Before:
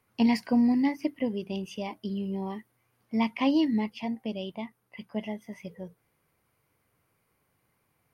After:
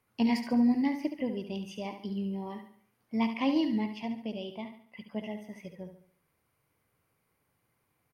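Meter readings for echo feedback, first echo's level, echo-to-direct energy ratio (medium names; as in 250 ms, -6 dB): 42%, -9.0 dB, -8.0 dB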